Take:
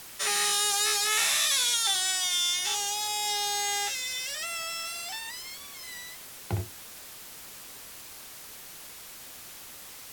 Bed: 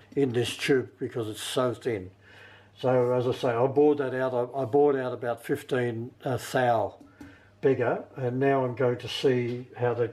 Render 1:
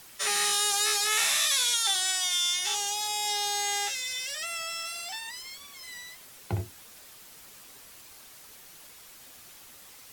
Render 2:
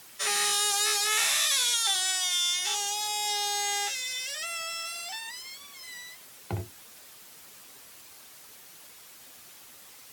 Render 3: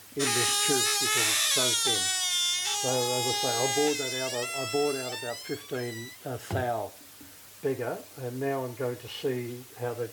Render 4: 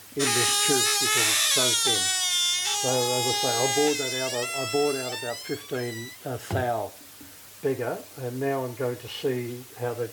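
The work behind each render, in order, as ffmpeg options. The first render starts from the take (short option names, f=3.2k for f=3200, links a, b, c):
-af "afftdn=nr=6:nf=-46"
-af "highpass=f=100:p=1"
-filter_complex "[1:a]volume=-6.5dB[a];[0:a][a]amix=inputs=2:normalize=0"
-af "volume=3dB"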